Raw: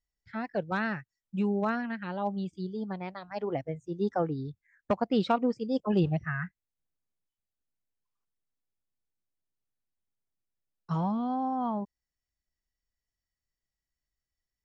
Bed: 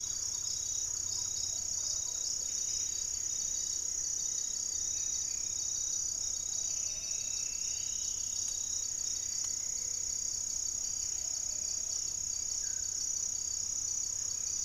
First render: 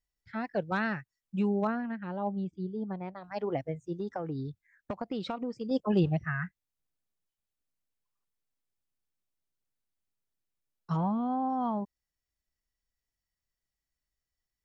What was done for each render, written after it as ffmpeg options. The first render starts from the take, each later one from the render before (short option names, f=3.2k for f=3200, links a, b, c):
-filter_complex "[0:a]asettb=1/sr,asplit=3[a][b][c];[a]atrim=end=1.674[d];[b]atrim=start=1.67:end=3.24,asetpts=PTS-STARTPTS,afade=t=in:d=0.004:c=qsin,afade=t=out:st=1.566:d=0.004:c=qsin,lowpass=f=1k:p=1[e];[c]atrim=start=3.236[f];[d][e]acrossfade=d=0.004:c1=hsin:c2=qsin[g];[g][f]acrossfade=d=0.004:c1=qsin:c2=hsin,asettb=1/sr,asplit=3[h][i][j];[h]atrim=end=3.974[k];[i]atrim=start=3.97:end=5.71,asetpts=PTS-STARTPTS,afade=t=in:d=0.004:c=qsin,afade=t=out:st=1.736:d=0.004:c=qsin,acompressor=threshold=-30dB:ratio=10:attack=3.2:release=140:knee=1:detection=peak[l];[j]atrim=start=5.706[m];[k][l]acrossfade=d=0.004:c1=hsin:c2=qsin[n];[n][m]acrossfade=d=0.004:c1=qsin:c2=hsin,asplit=3[o][p][q];[o]afade=t=out:st=10.96:d=0.02[r];[p]lowpass=2.6k,afade=t=in:st=10.96:d=0.02,afade=t=out:st=11.48:d=0.02[s];[q]afade=t=in:st=11.48:d=0.02[t];[r][s][t]amix=inputs=3:normalize=0"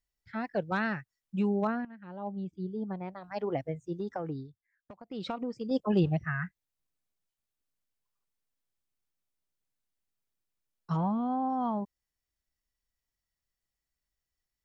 -filter_complex "[0:a]asplit=4[a][b][c][d];[a]atrim=end=1.85,asetpts=PTS-STARTPTS,afade=t=out:st=1.846:d=0.004:c=hsin:silence=0.16788[e];[b]atrim=start=1.85:end=4.48,asetpts=PTS-STARTPTS,afade=t=in:d=0.85:silence=0.16788,afade=t=out:st=2.46:d=0.17:silence=0.223872[f];[c]atrim=start=4.48:end=5.07,asetpts=PTS-STARTPTS,volume=-13dB[g];[d]atrim=start=5.07,asetpts=PTS-STARTPTS,afade=t=in:d=0.17:silence=0.223872[h];[e][f][g][h]concat=n=4:v=0:a=1"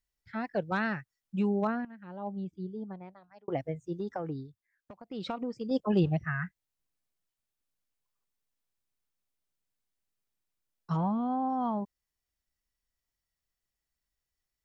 -filter_complex "[0:a]asplit=2[a][b];[a]atrim=end=3.48,asetpts=PTS-STARTPTS,afade=t=out:st=2.43:d=1.05[c];[b]atrim=start=3.48,asetpts=PTS-STARTPTS,afade=t=in:d=0.004:c=hsin[d];[c][d]concat=n=2:v=0:a=1"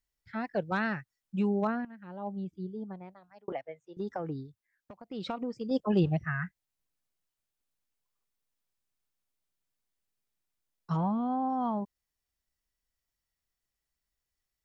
-filter_complex "[0:a]asettb=1/sr,asplit=3[a][b][c];[a]atrim=end=3.524[d];[b]atrim=start=3.52:end=3.97,asetpts=PTS-STARTPTS,afade=t=in:d=0.004:c=qsin,afade=t=out:st=0.446:d=0.004:c=qsin,acrossover=split=510 4000:gain=0.0708 1 0.141[e][f][g];[e][f][g]amix=inputs=3:normalize=0[h];[c]atrim=start=3.966[i];[d][h]acrossfade=d=0.004:c1=hsin:c2=qsin[j];[j][i]acrossfade=d=0.004:c1=qsin:c2=hsin"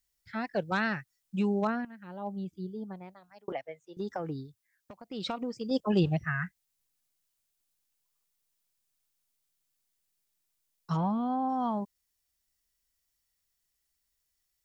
-af "highshelf=f=3.2k:g=10"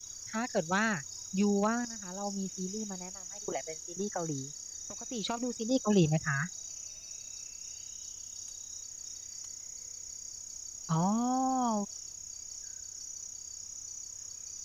-filter_complex "[1:a]volume=-8.5dB[a];[0:a][a]amix=inputs=2:normalize=0"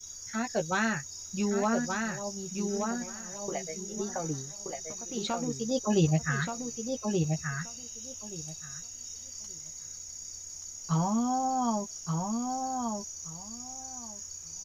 -filter_complex "[0:a]asplit=2[a][b];[b]adelay=13,volume=-5.5dB[c];[a][c]amix=inputs=2:normalize=0,asplit=2[d][e];[e]adelay=1177,lowpass=f=3.3k:p=1,volume=-4dB,asplit=2[f][g];[g]adelay=1177,lowpass=f=3.3k:p=1,volume=0.17,asplit=2[h][i];[i]adelay=1177,lowpass=f=3.3k:p=1,volume=0.17[j];[d][f][h][j]amix=inputs=4:normalize=0"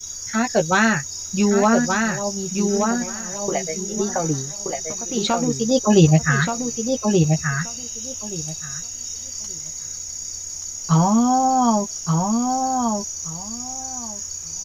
-af "volume=11.5dB"